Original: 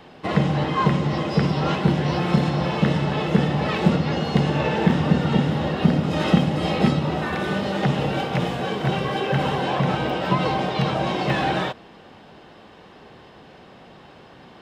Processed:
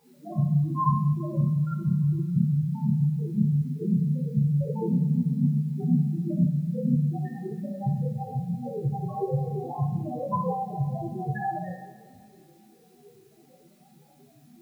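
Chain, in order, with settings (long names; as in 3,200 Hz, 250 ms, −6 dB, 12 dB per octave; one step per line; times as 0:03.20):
spectral peaks only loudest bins 1
bit-depth reduction 12 bits, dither triangular
coupled-rooms reverb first 0.5 s, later 2.2 s, from −18 dB, DRR −6.5 dB
level −1.5 dB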